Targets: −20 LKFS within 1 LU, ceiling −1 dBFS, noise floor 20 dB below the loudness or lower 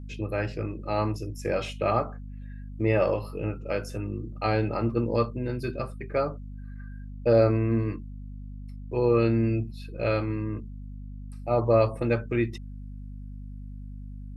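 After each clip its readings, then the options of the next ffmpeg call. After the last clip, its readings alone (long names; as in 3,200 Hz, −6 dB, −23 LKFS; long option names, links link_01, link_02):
mains hum 50 Hz; hum harmonics up to 250 Hz; level of the hum −37 dBFS; integrated loudness −27.5 LKFS; sample peak −9.5 dBFS; target loudness −20.0 LKFS
→ -af "bandreject=frequency=50:width_type=h:width=6,bandreject=frequency=100:width_type=h:width=6,bandreject=frequency=150:width_type=h:width=6,bandreject=frequency=200:width_type=h:width=6,bandreject=frequency=250:width_type=h:width=6"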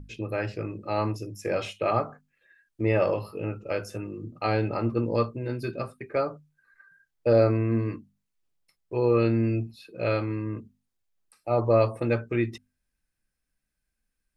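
mains hum none found; integrated loudness −27.5 LKFS; sample peak −10.0 dBFS; target loudness −20.0 LKFS
→ -af "volume=7.5dB"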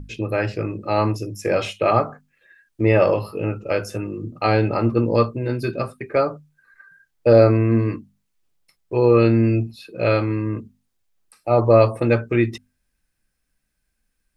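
integrated loudness −20.0 LKFS; sample peak −2.5 dBFS; background noise floor −74 dBFS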